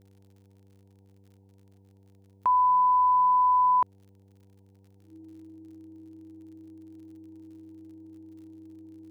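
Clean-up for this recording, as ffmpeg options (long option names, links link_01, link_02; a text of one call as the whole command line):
ffmpeg -i in.wav -af "adeclick=threshold=4,bandreject=frequency=97.9:width_type=h:width=4,bandreject=frequency=195.8:width_type=h:width=4,bandreject=frequency=293.7:width_type=h:width=4,bandreject=frequency=391.6:width_type=h:width=4,bandreject=frequency=489.5:width_type=h:width=4,bandreject=frequency=320:width=30,afftdn=noise_reduction=13:noise_floor=-58" out.wav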